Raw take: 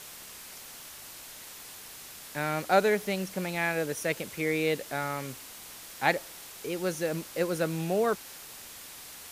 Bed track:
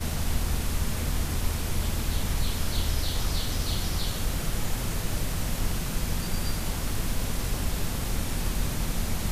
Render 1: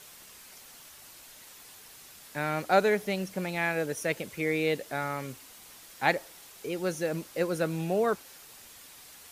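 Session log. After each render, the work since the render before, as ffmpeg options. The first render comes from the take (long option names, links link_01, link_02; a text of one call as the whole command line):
ffmpeg -i in.wav -af "afftdn=noise_reduction=6:noise_floor=-46" out.wav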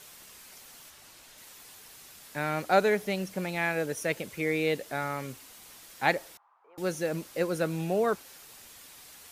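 ffmpeg -i in.wav -filter_complex "[0:a]asettb=1/sr,asplit=3[link_01][link_02][link_03];[link_01]atrim=end=0.904[link_04];[link_02]atrim=start=0.9:end=1.38,asetpts=PTS-STARTPTS,afade=type=in:duration=0.004:curve=qsin,afade=type=out:start_time=0.476:duration=0.004:curve=qsin,highshelf=frequency=10000:gain=-8[link_05];[link_03]atrim=start=1.376[link_06];[link_04][link_05]acrossfade=duration=0.004:curve1=hsin:curve2=qsin[link_07];[link_07][link_06]acrossfade=duration=0.004:curve1=qsin:curve2=hsin,asettb=1/sr,asplit=3[link_08][link_09][link_10];[link_08]atrim=end=6.374[link_11];[link_09]atrim=start=6.37:end=6.78,asetpts=PTS-STARTPTS,afade=type=in:duration=0.004:curve=qsin,afade=type=out:start_time=0.406:duration=0.004:curve=qsin,asuperpass=centerf=1000:order=4:qfactor=2.4[link_12];[link_10]atrim=start=6.776[link_13];[link_11][link_12]acrossfade=duration=0.004:curve1=hsin:curve2=qsin[link_14];[link_14][link_13]acrossfade=duration=0.004:curve1=qsin:curve2=hsin" out.wav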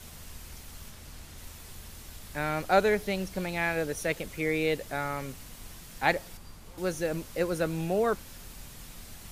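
ffmpeg -i in.wav -i bed.wav -filter_complex "[1:a]volume=-19.5dB[link_01];[0:a][link_01]amix=inputs=2:normalize=0" out.wav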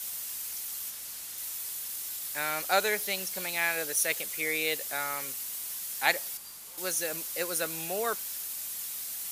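ffmpeg -i in.wav -af "highpass=frequency=910:poles=1,aemphasis=mode=production:type=75kf" out.wav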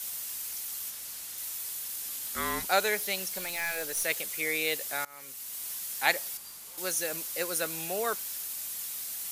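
ffmpeg -i in.wav -filter_complex "[0:a]asettb=1/sr,asplit=3[link_01][link_02][link_03];[link_01]atrim=end=2.024[link_04];[link_02]atrim=start=2.02:end=2.67,asetpts=PTS-STARTPTS,afade=type=in:duration=0.004:curve=qsin,afade=type=out:start_time=0.646:duration=0.004:curve=qsin,afreqshift=-350[link_05];[link_03]atrim=start=2.666[link_06];[link_04][link_05]acrossfade=duration=0.004:curve1=hsin:curve2=qsin[link_07];[link_07][link_06]acrossfade=duration=0.004:curve1=qsin:curve2=hsin,asettb=1/sr,asplit=3[link_08][link_09][link_10];[link_08]atrim=end=3.384[link_11];[link_09]atrim=start=3.38:end=4.04,asetpts=PTS-STARTPTS,afade=type=in:duration=0.004:curve=qsin,afade=type=out:start_time=0.656:duration=0.004:curve=qsin,aeval=exprs='(tanh(20*val(0)+0.15)-tanh(0.15))/20':channel_layout=same[link_12];[link_10]atrim=start=4.036[link_13];[link_11][link_12]acrossfade=duration=0.004:curve1=hsin:curve2=qsin[link_14];[link_14][link_13]acrossfade=duration=0.004:curve1=qsin:curve2=hsin,asplit=2[link_15][link_16];[link_15]atrim=end=5.05,asetpts=PTS-STARTPTS,afade=type=out:start_time=5.046:duration=0.004:curve=hsin:silence=0.0630957[link_17];[link_16]atrim=start=5.05,asetpts=PTS-STARTPTS,afade=type=in:duration=0.62:silence=0.0630957[link_18];[link_17][link_18]concat=n=2:v=0:a=1" out.wav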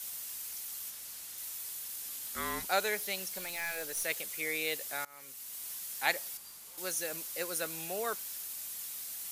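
ffmpeg -i in.wav -af "volume=-4.5dB" out.wav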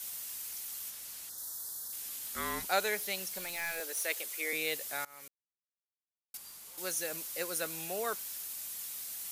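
ffmpeg -i in.wav -filter_complex "[0:a]asettb=1/sr,asplit=3[link_01][link_02][link_03];[link_01]atrim=end=1.294[link_04];[link_02]atrim=start=1.29:end=1.93,asetpts=PTS-STARTPTS,afade=type=in:duration=0.004:curve=qsin,afade=type=out:start_time=0.636:duration=0.004:curve=qsin,asuperstop=centerf=2500:order=4:qfactor=1.1[link_05];[link_03]atrim=start=1.926[link_06];[link_04][link_05]acrossfade=duration=0.004:curve1=hsin:curve2=qsin[link_07];[link_07][link_06]acrossfade=duration=0.004:curve1=qsin:curve2=hsin,asettb=1/sr,asplit=3[link_08][link_09][link_10];[link_08]atrim=end=3.804[link_11];[link_09]atrim=start=3.8:end=4.53,asetpts=PTS-STARTPTS,afade=type=in:duration=0.004:curve=qsin,afade=type=out:start_time=0.726:duration=0.004:curve=qsin,highpass=frequency=280:width=0.5412,highpass=frequency=280:width=1.3066[link_12];[link_10]atrim=start=4.526[link_13];[link_11][link_12]acrossfade=duration=0.004:curve1=hsin:curve2=qsin[link_14];[link_14][link_13]acrossfade=duration=0.004:curve1=qsin:curve2=hsin,asplit=3[link_15][link_16][link_17];[link_15]atrim=end=5.28,asetpts=PTS-STARTPTS,afade=type=out:start_time=5.276:duration=0.004:curve=hsin[link_18];[link_16]atrim=start=5.28:end=6.34,asetpts=PTS-STARTPTS,volume=0[link_19];[link_17]atrim=start=6.34,asetpts=PTS-STARTPTS,afade=type=in:duration=0.004:curve=hsin[link_20];[link_18][link_19][link_20]concat=n=3:v=0:a=1" out.wav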